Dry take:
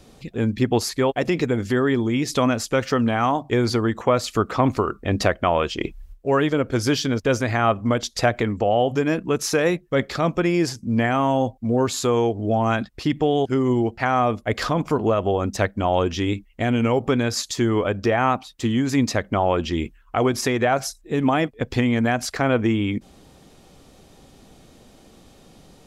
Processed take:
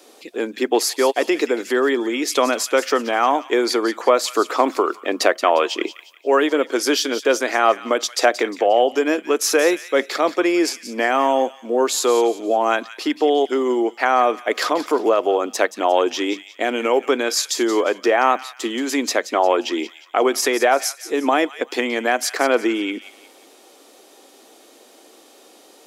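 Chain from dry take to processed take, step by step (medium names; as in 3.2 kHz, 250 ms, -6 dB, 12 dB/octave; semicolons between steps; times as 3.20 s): steep high-pass 300 Hz 36 dB/octave; treble shelf 10 kHz +8 dB; on a send: feedback echo behind a high-pass 177 ms, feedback 36%, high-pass 1.9 kHz, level -11.5 dB; on the sum: trim +4 dB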